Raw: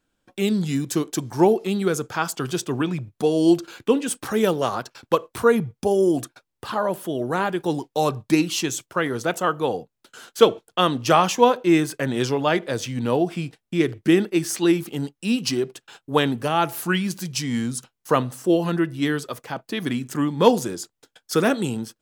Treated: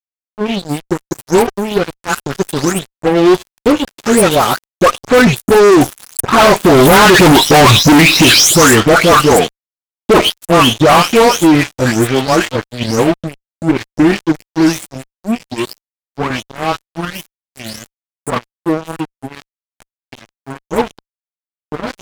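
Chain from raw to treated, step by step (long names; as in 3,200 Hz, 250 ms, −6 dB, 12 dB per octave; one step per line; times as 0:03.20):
every frequency bin delayed by itself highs late, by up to 362 ms
source passing by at 0:07.39, 21 m/s, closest 6.1 metres
fuzz pedal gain 43 dB, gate −52 dBFS
level +9 dB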